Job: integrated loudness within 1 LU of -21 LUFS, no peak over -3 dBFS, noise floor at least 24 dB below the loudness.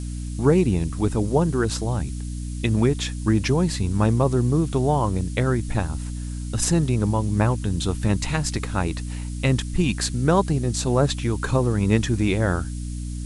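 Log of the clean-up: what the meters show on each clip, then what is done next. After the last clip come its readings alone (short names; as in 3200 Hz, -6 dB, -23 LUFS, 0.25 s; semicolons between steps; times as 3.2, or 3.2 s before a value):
hum 60 Hz; harmonics up to 300 Hz; hum level -27 dBFS; noise floor -30 dBFS; noise floor target -47 dBFS; loudness -23.0 LUFS; peak -3.5 dBFS; loudness target -21.0 LUFS
-> de-hum 60 Hz, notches 5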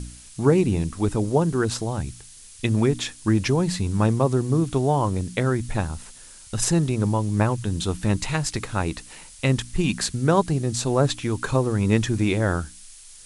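hum none; noise floor -46 dBFS; noise floor target -48 dBFS
-> noise print and reduce 6 dB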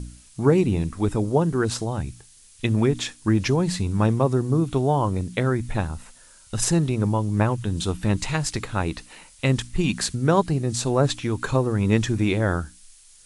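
noise floor -51 dBFS; loudness -23.5 LUFS; peak -4.5 dBFS; loudness target -21.0 LUFS
-> gain +2.5 dB; limiter -3 dBFS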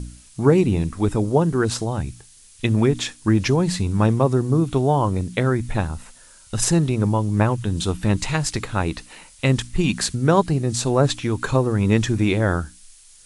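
loudness -21.0 LUFS; peak -3.0 dBFS; noise floor -49 dBFS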